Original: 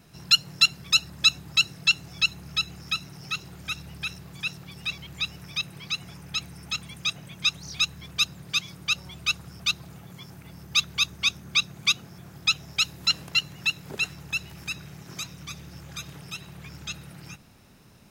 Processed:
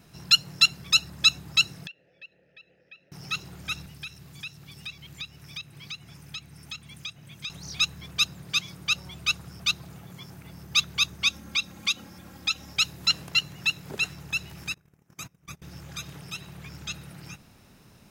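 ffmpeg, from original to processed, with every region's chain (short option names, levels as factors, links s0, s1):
-filter_complex "[0:a]asettb=1/sr,asplit=3[s0][s1][s2];[s0]atrim=end=1.874[s3];[s1]atrim=start=1.87:end=3.12,asetpts=PTS-STARTPTS,afade=t=in:d=0.004:c=qsin,afade=t=out:st=1.246:d=0.004:c=qsin,aemphasis=mode=reproduction:type=75kf,acompressor=threshold=0.0178:ratio=2:attack=3.2:release=140:knee=1:detection=peak,asplit=3[s4][s5][s6];[s4]bandpass=f=530:t=q:w=8,volume=1[s7];[s5]bandpass=f=1840:t=q:w=8,volume=0.501[s8];[s6]bandpass=f=2480:t=q:w=8,volume=0.355[s9];[s7][s8][s9]amix=inputs=3:normalize=0[s10];[s2]atrim=start=3.116[s11];[s3][s10]acrossfade=d=0.004:c1=hsin:c2=qsin[s12];[s12][s11]acrossfade=d=0.004:c1=qsin:c2=hsin,asettb=1/sr,asplit=3[s13][s14][s15];[s13]atrim=end=3.864[s16];[s14]atrim=start=3.86:end=7.5,asetpts=PTS-STARTPTS,afade=t=in:d=0.004:c=qsin,afade=t=out:st=3.636:d=0.004:c=qsin,bandreject=f=60:t=h:w=6,bandreject=f=120:t=h:w=6,bandreject=f=180:t=h:w=6,bandreject=f=240:t=h:w=6,bandreject=f=300:t=h:w=6,bandreject=f=360:t=h:w=6,bandreject=f=420:t=h:w=6,bandreject=f=480:t=h:w=6,bandreject=f=540:t=h:w=6,acrossover=split=97|3500[s17][s18][s19];[s17]acompressor=threshold=0.00112:ratio=4[s20];[s18]acompressor=threshold=0.0158:ratio=4[s21];[s19]acompressor=threshold=0.00631:ratio=4[s22];[s20][s21][s22]amix=inputs=3:normalize=0,equalizer=f=760:w=0.42:g=-7[s23];[s15]atrim=start=7.496[s24];[s16][s23]acrossfade=d=0.004:c1=hsin:c2=qsin[s25];[s25][s24]acrossfade=d=0.004:c1=qsin:c2=hsin,asettb=1/sr,asplit=3[s26][s27][s28];[s26]atrim=end=11.284[s29];[s27]atrim=start=11.28:end=12.73,asetpts=PTS-STARTPTS,afade=t=in:d=0.004:c=qsin,afade=t=out:st=1.446:d=0.004:c=qsin,acompressor=threshold=0.0282:ratio=1.5:attack=3.2:release=140:knee=1:detection=peak,aecho=1:1:3.7:0.69,atrim=end_sample=63945[s30];[s28]atrim=start=12.726[s31];[s29][s30]acrossfade=d=0.004:c1=hsin:c2=qsin[s32];[s32][s31]acrossfade=d=0.004:c1=qsin:c2=hsin,asettb=1/sr,asplit=3[s33][s34][s35];[s33]atrim=end=14.744[s36];[s34]atrim=start=14.74:end=15.62,asetpts=PTS-STARTPTS,afade=t=in:d=0.004:c=qsin,afade=t=out:st=0.876:d=0.004:c=qsin,agate=range=0.0631:threshold=0.01:ratio=16:release=100:detection=peak,equalizer=f=4200:w=1.2:g=-10.5[s37];[s35]atrim=start=15.616[s38];[s36][s37]acrossfade=d=0.004:c1=hsin:c2=qsin[s39];[s39][s38]acrossfade=d=0.004:c1=qsin:c2=hsin"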